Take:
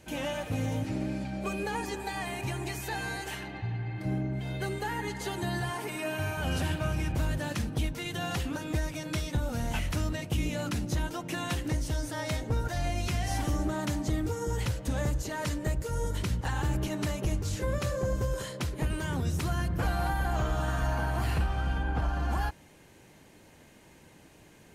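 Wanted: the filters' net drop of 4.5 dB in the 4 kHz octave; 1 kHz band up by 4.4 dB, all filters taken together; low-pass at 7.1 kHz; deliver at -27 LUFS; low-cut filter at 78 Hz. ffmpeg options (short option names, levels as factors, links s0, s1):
-af "highpass=78,lowpass=7100,equalizer=f=1000:t=o:g=6,equalizer=f=4000:t=o:g=-6.5,volume=1.88"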